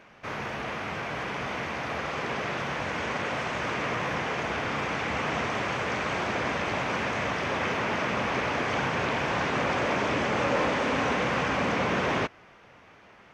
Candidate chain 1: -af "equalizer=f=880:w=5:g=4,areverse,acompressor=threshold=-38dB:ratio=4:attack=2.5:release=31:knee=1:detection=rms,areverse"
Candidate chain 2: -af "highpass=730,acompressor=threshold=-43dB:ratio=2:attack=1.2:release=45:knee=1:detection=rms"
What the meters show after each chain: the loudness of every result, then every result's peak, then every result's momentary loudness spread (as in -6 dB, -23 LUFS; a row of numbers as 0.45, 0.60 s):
-38.5, -39.0 LUFS; -28.0, -28.5 dBFS; 2, 3 LU